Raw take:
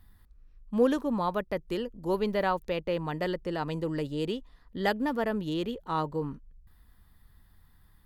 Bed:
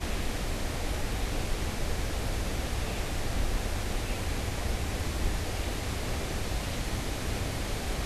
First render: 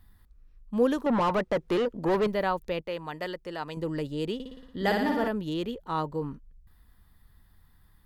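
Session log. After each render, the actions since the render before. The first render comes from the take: 1.06–2.27 s: overdrive pedal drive 26 dB, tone 1.4 kHz, clips at -17 dBFS; 2.81–3.77 s: bass shelf 400 Hz -10 dB; 4.34–5.28 s: flutter echo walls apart 9.8 m, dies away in 0.97 s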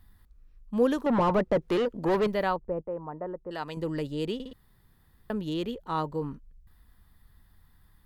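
1.18–1.62 s: tilt shelf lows +4.5 dB; 2.56–3.51 s: low-pass 1.1 kHz 24 dB/octave; 4.53–5.30 s: room tone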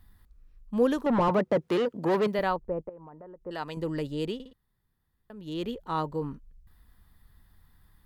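1.28–2.39 s: high-pass 95 Hz 24 dB/octave; 2.89–3.45 s: compression, threshold -44 dBFS; 4.26–5.66 s: dip -14.5 dB, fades 0.30 s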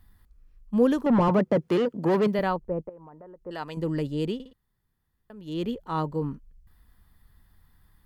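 band-stop 3.8 kHz, Q 20; dynamic bell 180 Hz, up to +6 dB, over -39 dBFS, Q 0.72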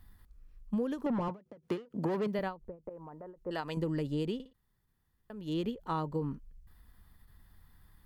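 compression 16:1, threshold -29 dBFS, peak gain reduction 14.5 dB; endings held to a fixed fall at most 210 dB/s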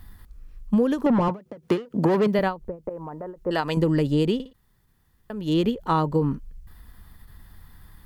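trim +12 dB

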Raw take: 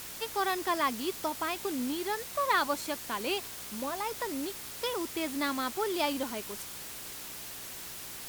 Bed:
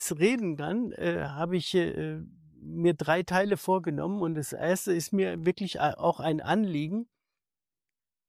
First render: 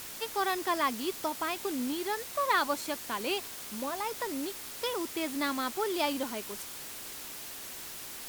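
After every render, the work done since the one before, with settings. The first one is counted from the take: de-hum 60 Hz, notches 3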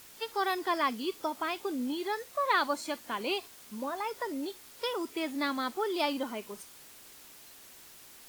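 noise print and reduce 10 dB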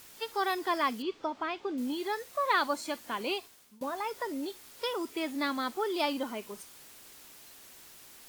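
1.02–1.78 s: distance through air 160 m; 3.26–3.81 s: fade out, to -22 dB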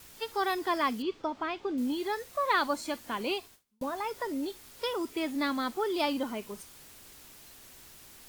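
gate with hold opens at -45 dBFS; bass shelf 150 Hz +11.5 dB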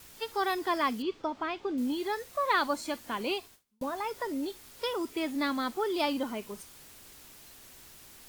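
no audible change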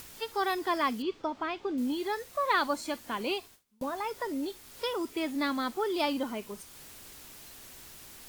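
upward compressor, threshold -43 dBFS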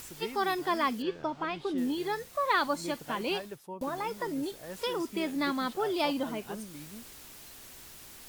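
add bed -16.5 dB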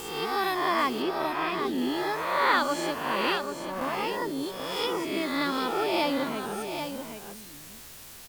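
reverse spectral sustain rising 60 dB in 1.07 s; delay 785 ms -7.5 dB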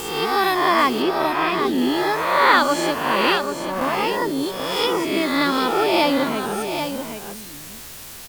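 trim +8.5 dB

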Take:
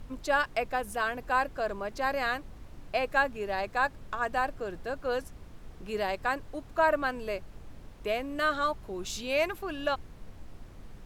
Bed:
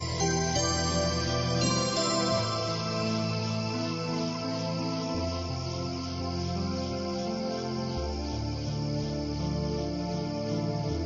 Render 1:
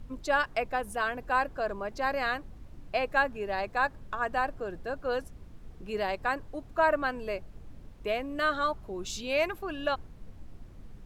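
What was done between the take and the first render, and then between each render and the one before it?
noise reduction 6 dB, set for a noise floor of -49 dBFS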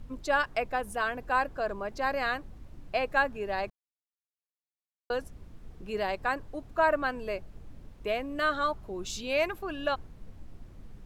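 3.70–5.10 s: mute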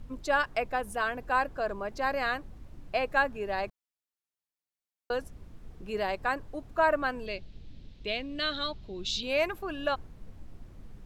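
7.26–9.23 s: FFT filter 230 Hz 0 dB, 1.2 kHz -10 dB, 3.9 kHz +11 dB, 10 kHz -14 dB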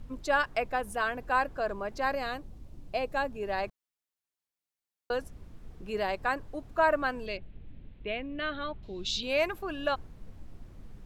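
2.15–3.43 s: peaking EQ 1.6 kHz -8 dB 1.6 oct; 7.37–8.83 s: low-pass 2.6 kHz 24 dB/octave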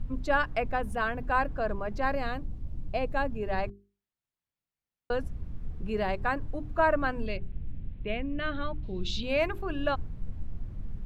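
tone controls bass +12 dB, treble -8 dB; hum notches 50/100/150/200/250/300/350/400 Hz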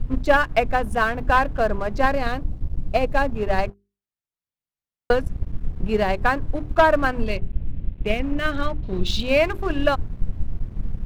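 transient shaper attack +7 dB, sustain -1 dB; waveshaping leveller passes 2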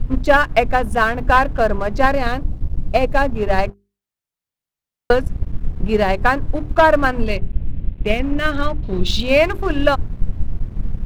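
trim +4.5 dB; peak limiter -3 dBFS, peak gain reduction 2 dB

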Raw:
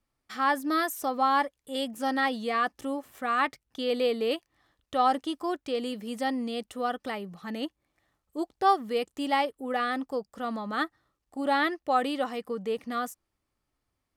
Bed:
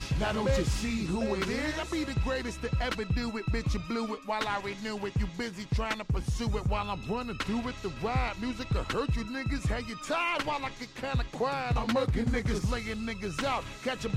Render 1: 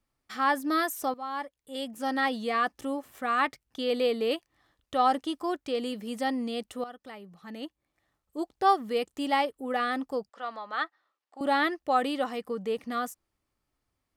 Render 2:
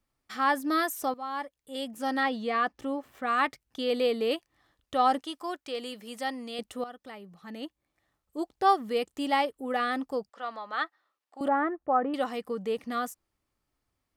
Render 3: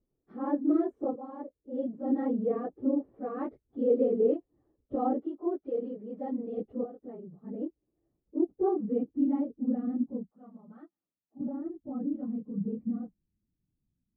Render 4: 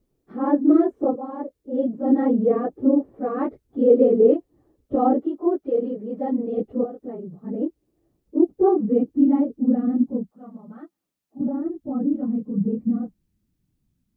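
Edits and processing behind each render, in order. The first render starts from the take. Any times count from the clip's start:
1.14–2.32 s: fade in, from -15.5 dB; 6.84–8.69 s: fade in, from -14.5 dB; 10.29–11.41 s: band-pass 650–4400 Hz
2.23–3.27 s: peaking EQ 11 kHz -11 dB 1.5 oct; 5.21–6.59 s: bass shelf 410 Hz -11.5 dB; 11.48–12.14 s: low-pass 1.5 kHz 24 dB/octave
phase randomisation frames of 50 ms; low-pass sweep 400 Hz -> 200 Hz, 7.84–10.50 s
trim +10 dB

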